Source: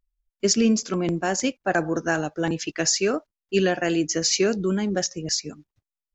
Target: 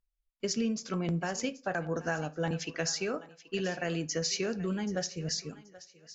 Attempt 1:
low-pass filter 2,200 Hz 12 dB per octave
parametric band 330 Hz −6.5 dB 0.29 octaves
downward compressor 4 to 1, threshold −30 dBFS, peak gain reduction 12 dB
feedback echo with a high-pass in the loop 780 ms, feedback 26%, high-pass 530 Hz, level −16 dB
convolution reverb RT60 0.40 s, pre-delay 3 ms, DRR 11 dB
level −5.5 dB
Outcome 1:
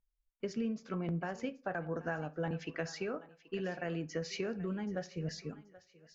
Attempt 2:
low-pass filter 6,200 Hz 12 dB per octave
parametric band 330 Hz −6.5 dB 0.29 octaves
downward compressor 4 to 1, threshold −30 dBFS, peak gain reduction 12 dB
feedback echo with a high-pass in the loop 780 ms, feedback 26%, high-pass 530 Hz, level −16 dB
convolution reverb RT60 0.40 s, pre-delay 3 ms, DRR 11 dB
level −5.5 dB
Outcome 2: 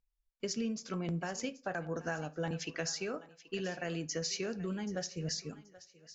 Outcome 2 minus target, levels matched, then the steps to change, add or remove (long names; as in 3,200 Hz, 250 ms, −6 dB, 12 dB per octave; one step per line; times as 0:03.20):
downward compressor: peak gain reduction +5 dB
change: downward compressor 4 to 1, threshold −23.5 dBFS, peak gain reduction 7 dB